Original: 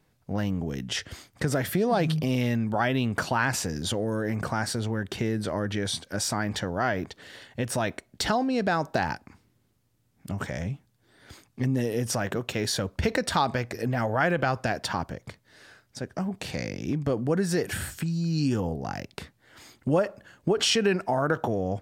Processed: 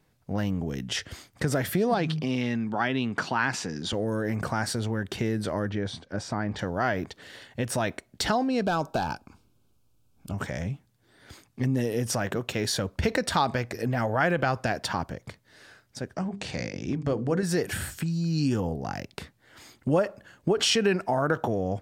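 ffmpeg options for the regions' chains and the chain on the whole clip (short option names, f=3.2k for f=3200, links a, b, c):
-filter_complex "[0:a]asettb=1/sr,asplit=3[a][b][c];[a]atrim=end=1.944[d];[b]atrim=start=1.94:end=3.93,asetpts=PTS-STARTPTS,afade=t=in:d=0.004:c=qsin,afade=t=out:st=1.986:d=0.004:c=qsin,highpass=160,lowpass=5.8k,equalizer=f=580:w=2.7:g=-6[e];[c]atrim=start=3.926[f];[d][e]acrossfade=d=0.004:c1=hsin:c2=qsin[g];[g][f]acrossfade=d=0.004:c1=qsin:c2=hsin,asettb=1/sr,asplit=3[h][i][j];[h]atrim=end=5.694[k];[i]atrim=start=5.69:end=6.59,asetpts=PTS-STARTPTS,afade=t=in:d=0.004:c=qsin,afade=t=out:st=0.896:d=0.004:c=qsin,lowpass=6.2k,highshelf=f=2k:g=-10[l];[j]atrim=start=6.586[m];[k][l]acrossfade=d=0.004:c1=hsin:c2=qsin[n];[n][m]acrossfade=d=0.004:c1=qsin:c2=hsin,asettb=1/sr,asplit=3[o][p][q];[o]atrim=end=8.634[r];[p]atrim=start=8.63:end=10.34,asetpts=PTS-STARTPTS,afade=t=in:d=0.004:c=qsin,afade=t=out:st=1.706:d=0.004:c=qsin,asoftclip=type=hard:threshold=-19dB,asuperstop=centerf=1900:order=4:qfactor=2.7,asubboost=boost=8.5:cutoff=56[s];[q]atrim=start=10.336[t];[r][s]acrossfade=d=0.004:c1=hsin:c2=qsin[u];[u][t]acrossfade=d=0.004:c1=qsin:c2=hsin,asettb=1/sr,asplit=3[v][w][x];[v]atrim=end=16.144[y];[w]atrim=start=16.14:end=17.43,asetpts=PTS-STARTPTS,afade=t=in:d=0.004:c=qsin,afade=t=out:st=1.286:d=0.004:c=qsin,lowpass=f=8.6k:w=0.5412,lowpass=f=8.6k:w=1.3066,bandreject=f=50:t=h:w=6,bandreject=f=100:t=h:w=6,bandreject=f=150:t=h:w=6,bandreject=f=200:t=h:w=6,bandreject=f=250:t=h:w=6,bandreject=f=300:t=h:w=6,bandreject=f=350:t=h:w=6,bandreject=f=400:t=h:w=6,bandreject=f=450:t=h:w=6,bandreject=f=500:t=h:w=6[z];[x]atrim=start=17.426[aa];[y][z]acrossfade=d=0.004:c1=hsin:c2=qsin[ab];[ab][aa]acrossfade=d=0.004:c1=qsin:c2=hsin"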